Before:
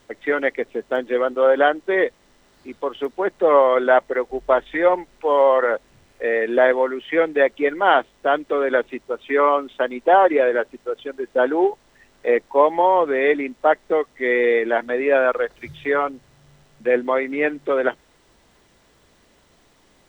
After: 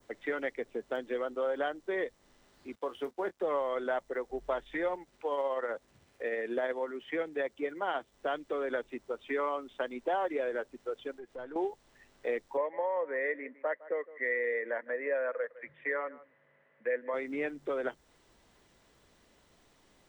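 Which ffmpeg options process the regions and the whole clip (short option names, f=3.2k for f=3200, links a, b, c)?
-filter_complex "[0:a]asettb=1/sr,asplit=3[a][b][c];[a]atrim=end=2.754[d];[b]atrim=start=2.75:end=3.42,asetpts=PTS-STARTPTS,afade=t=in:d=0.004:c=qsin,afade=t=out:st=0.666:d=0.004:c=qsin,highpass=54,aeval=exprs='sgn(val(0))*max(abs(val(0))-0.00211,0)':c=same,asplit=2[e][f];[f]adelay=23,volume=-12.5dB[g];[e][g]amix=inputs=2:normalize=0,atrim=end_sample=29547[h];[c]atrim=start=3.416[i];[d][h]acrossfade=d=0.004:c1=hsin:c2=qsin[j];[j][i]acrossfade=d=0.004:c1=qsin:c2=hsin,asettb=1/sr,asplit=3[k][l][m];[k]atrim=end=4.964[n];[l]atrim=start=4.96:end=8.12,asetpts=PTS-STARTPTS,afade=t=in:d=0.004:c=qsin,afade=t=out:st=3.156:d=0.004:c=qsin,highpass=55,tremolo=f=16:d=0.33[o];[m]atrim=start=8.116[p];[n][o]acrossfade=d=0.004:c1=hsin:c2=qsin[q];[q][p]acrossfade=d=0.004:c1=qsin:c2=hsin,asettb=1/sr,asplit=3[r][s][t];[r]atrim=end=11.144[u];[s]atrim=start=11.14:end=11.56,asetpts=PTS-STARTPTS,afade=t=in:d=0.004:c=qsin,afade=t=out:st=0.416:d=0.004:c=qsin,aeval=exprs='if(lt(val(0),0),0.708*val(0),val(0))':c=same,acompressor=threshold=-39dB:ratio=2.5:attack=3.2:release=140:knee=1:detection=peak[v];[t]atrim=start=11.556[w];[u][v]acrossfade=d=0.004:c1=hsin:c2=qsin[x];[x][w]acrossfade=d=0.004:c1=qsin:c2=hsin,asettb=1/sr,asplit=3[y][z][aa];[y]atrim=end=12.574[ab];[z]atrim=start=12.57:end=17.14,asetpts=PTS-STARTPTS,afade=t=in:d=0.004:c=qsin,afade=t=out:st=4.566:d=0.004:c=qsin,highpass=370,equalizer=f=370:t=q:w=4:g=-8,equalizer=f=530:t=q:w=4:g=7,equalizer=f=760:t=q:w=4:g=-9,equalizer=f=1.3k:t=q:w=4:g=-4,equalizer=f=1.9k:t=q:w=4:g=9,lowpass=f=2.1k:w=0.5412,lowpass=f=2.1k:w=1.3066,aecho=1:1:157:0.0794,atrim=end_sample=201537[ac];[aa]atrim=start=17.136[ad];[ab][ac]acrossfade=d=0.004:c1=hsin:c2=qsin[ae];[ae][ad]acrossfade=d=0.004:c1=qsin:c2=hsin,acrossover=split=130|3000[af][ag][ah];[ag]acompressor=threshold=-25dB:ratio=2.5[ai];[af][ai][ah]amix=inputs=3:normalize=0,adynamicequalizer=threshold=0.00562:dfrequency=2900:dqfactor=0.97:tfrequency=2900:tqfactor=0.97:attack=5:release=100:ratio=0.375:range=2.5:mode=cutabove:tftype=bell,volume=-8dB"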